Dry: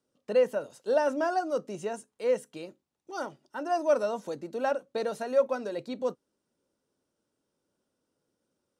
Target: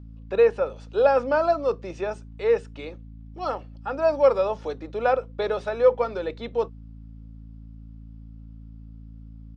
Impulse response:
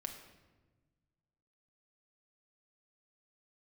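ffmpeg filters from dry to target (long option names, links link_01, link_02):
-filter_complex "[0:a]acrossover=split=430 4800:gain=0.224 1 0.0631[link_01][link_02][link_03];[link_01][link_02][link_03]amix=inputs=3:normalize=0,aeval=exprs='val(0)+0.00355*(sin(2*PI*60*n/s)+sin(2*PI*2*60*n/s)/2+sin(2*PI*3*60*n/s)/3+sin(2*PI*4*60*n/s)/4+sin(2*PI*5*60*n/s)/5)':channel_layout=same,asetrate=40517,aresample=44100,aresample=22050,aresample=44100,volume=8dB"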